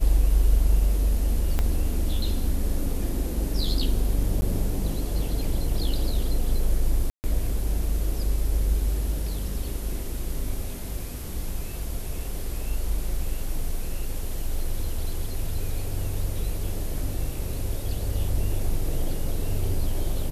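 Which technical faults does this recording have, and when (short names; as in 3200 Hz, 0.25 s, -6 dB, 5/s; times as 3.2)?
1.59 pop -12 dBFS
4.41–4.42 gap 10 ms
7.1–7.24 gap 0.139 s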